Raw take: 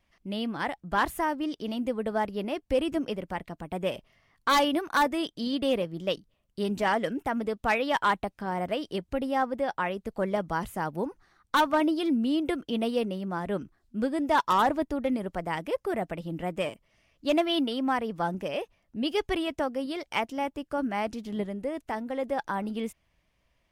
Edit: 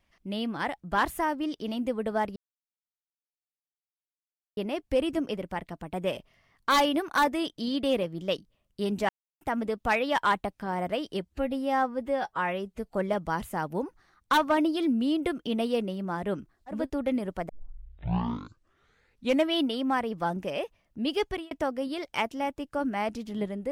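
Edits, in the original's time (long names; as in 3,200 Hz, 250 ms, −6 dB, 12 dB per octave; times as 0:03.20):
0:02.36: splice in silence 2.21 s
0:06.88–0:07.20: silence
0:09.04–0:10.16: time-stretch 1.5×
0:14.01–0:14.76: remove, crossfade 0.24 s
0:15.47: tape start 2.07 s
0:19.22–0:19.49: fade out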